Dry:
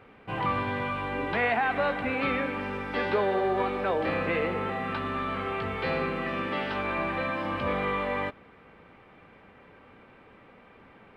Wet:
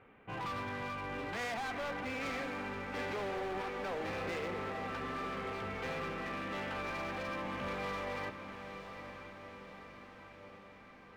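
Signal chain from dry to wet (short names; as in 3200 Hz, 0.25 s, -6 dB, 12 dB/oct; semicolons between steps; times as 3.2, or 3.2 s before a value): Chebyshev low-pass 2700 Hz, order 2; hard clip -29.5 dBFS, distortion -9 dB; diffused feedback echo 0.905 s, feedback 59%, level -9 dB; gain -7 dB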